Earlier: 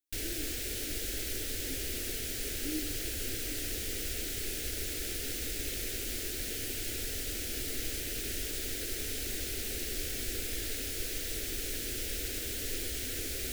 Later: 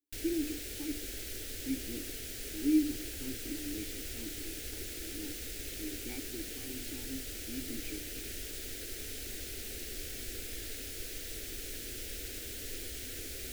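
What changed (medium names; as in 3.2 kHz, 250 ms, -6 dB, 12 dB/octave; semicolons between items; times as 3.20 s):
speech +11.5 dB; background -5.5 dB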